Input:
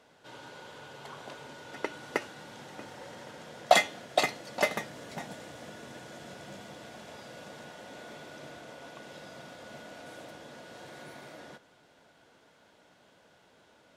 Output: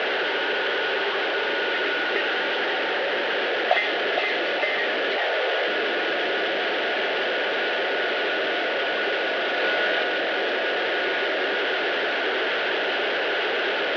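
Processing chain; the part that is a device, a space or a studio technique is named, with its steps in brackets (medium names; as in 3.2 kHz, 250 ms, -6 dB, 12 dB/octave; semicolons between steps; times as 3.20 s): digital answering machine (band-pass 340–3200 Hz; one-bit delta coder 32 kbps, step -19 dBFS; cabinet simulation 370–3600 Hz, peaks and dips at 390 Hz +10 dB, 1 kHz -9 dB, 1.7 kHz +6 dB, 3 kHz +5 dB); 5.16–5.67 s: resonant low shelf 330 Hz -12.5 dB, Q 1.5; 9.55–10.04 s: doubling 24 ms -3.5 dB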